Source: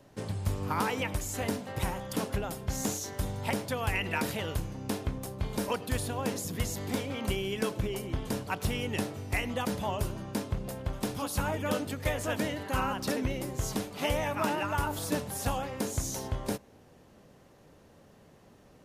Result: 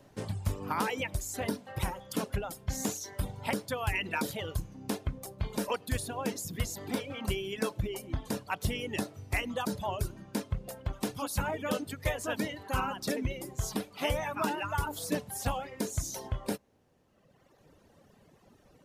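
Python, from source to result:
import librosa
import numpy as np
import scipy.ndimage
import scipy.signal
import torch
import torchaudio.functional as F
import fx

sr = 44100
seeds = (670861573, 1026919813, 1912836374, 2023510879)

y = fx.dereverb_blind(x, sr, rt60_s=1.8)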